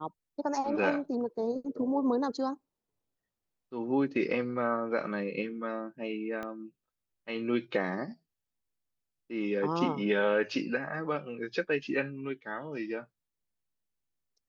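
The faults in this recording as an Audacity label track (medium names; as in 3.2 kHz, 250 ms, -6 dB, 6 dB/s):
6.430000	6.430000	pop -25 dBFS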